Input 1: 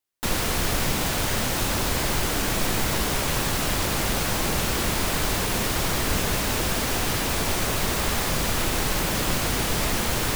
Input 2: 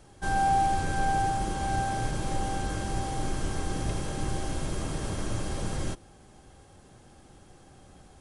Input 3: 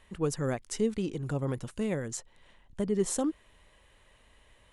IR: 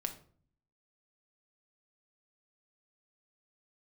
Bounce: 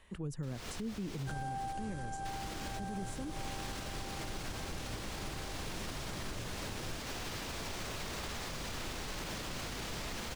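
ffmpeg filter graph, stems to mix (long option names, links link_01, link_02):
-filter_complex "[0:a]acrossover=split=6800[link_01][link_02];[link_02]acompressor=threshold=-45dB:ratio=4:attack=1:release=60[link_03];[link_01][link_03]amix=inputs=2:normalize=0,highshelf=frequency=4300:gain=5.5,adelay=200,volume=-12.5dB,asplit=3[link_04][link_05][link_06];[link_04]atrim=end=1.73,asetpts=PTS-STARTPTS,afade=type=out:start_time=1.726:duration=0.004:curve=hsin[link_07];[link_05]atrim=start=1.73:end=2.25,asetpts=PTS-STARTPTS,volume=0[link_08];[link_06]atrim=start=2.25,asetpts=PTS-STARTPTS,afade=type=in:duration=0.004:curve=hsin[link_09];[link_07][link_08][link_09]concat=n=3:v=0:a=1[link_10];[1:a]adelay=1050,volume=-11dB[link_11];[2:a]acrossover=split=240[link_12][link_13];[link_13]acompressor=threshold=-43dB:ratio=6[link_14];[link_12][link_14]amix=inputs=2:normalize=0,volume=-1.5dB,asplit=2[link_15][link_16];[link_16]apad=whole_len=465510[link_17];[link_10][link_17]sidechaincompress=threshold=-52dB:ratio=3:attack=12:release=176[link_18];[link_18][link_15]amix=inputs=2:normalize=0,alimiter=level_in=7.5dB:limit=-24dB:level=0:latency=1:release=37,volume=-7.5dB,volume=0dB[link_19];[link_11][link_19]amix=inputs=2:normalize=0,alimiter=level_in=6.5dB:limit=-24dB:level=0:latency=1:release=173,volume=-6.5dB"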